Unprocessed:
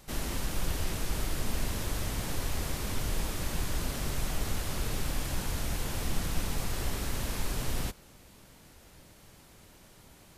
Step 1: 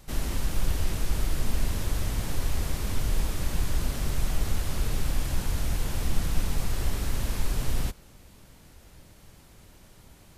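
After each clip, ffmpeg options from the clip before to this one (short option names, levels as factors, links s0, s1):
-af "lowshelf=f=120:g=7.5"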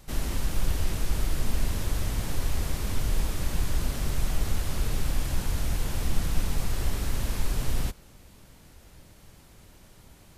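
-af anull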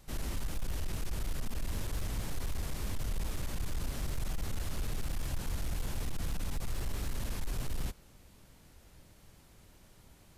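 -af "alimiter=limit=0.112:level=0:latency=1:release=26,asoftclip=type=hard:threshold=0.075,volume=0.501"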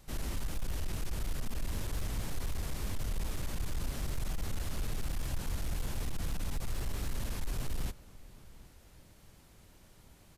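-filter_complex "[0:a]asplit=2[s0][s1];[s1]adelay=758,volume=0.1,highshelf=f=4000:g=-17.1[s2];[s0][s2]amix=inputs=2:normalize=0"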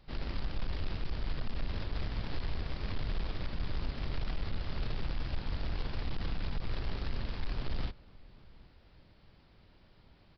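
-filter_complex "[0:a]asplit=2[s0][s1];[s1]acrusher=bits=4:mix=0:aa=0.000001,volume=0.266[s2];[s0][s2]amix=inputs=2:normalize=0,aresample=11025,aresample=44100,volume=0.794"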